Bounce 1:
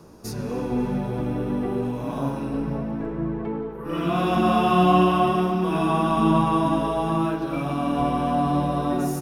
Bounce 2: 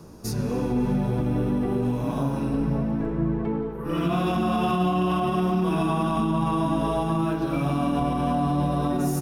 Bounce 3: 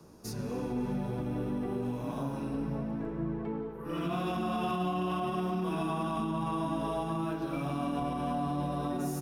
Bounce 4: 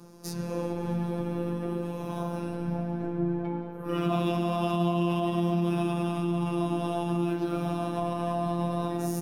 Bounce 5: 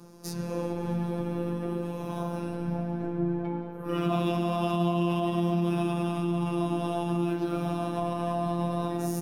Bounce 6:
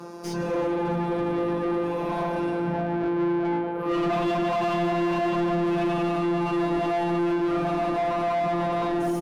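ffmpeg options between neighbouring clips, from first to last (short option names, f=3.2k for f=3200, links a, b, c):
-af "bass=f=250:g=5,treble=f=4k:g=3,alimiter=limit=-15.5dB:level=0:latency=1:release=70"
-filter_complex "[0:a]lowshelf=f=150:g=-6,acrossover=split=140|1300|6300[a][b][c][d];[d]asoftclip=type=hard:threshold=-36dB[e];[a][b][c][e]amix=inputs=4:normalize=0,volume=-7.5dB"
-filter_complex "[0:a]acrossover=split=600[a][b];[a]crystalizer=i=7:c=0[c];[c][b]amix=inputs=2:normalize=0,afftfilt=real='hypot(re,im)*cos(PI*b)':imag='0':win_size=1024:overlap=0.75,volume=7dB"
-af anull
-filter_complex "[0:a]asplit=2[a][b];[b]adelay=20,volume=-10dB[c];[a][c]amix=inputs=2:normalize=0,asplit=2[d][e];[e]highpass=f=720:p=1,volume=29dB,asoftclip=type=tanh:threshold=-12.5dB[f];[d][f]amix=inputs=2:normalize=0,lowpass=f=1.5k:p=1,volume=-6dB,volume=-4dB"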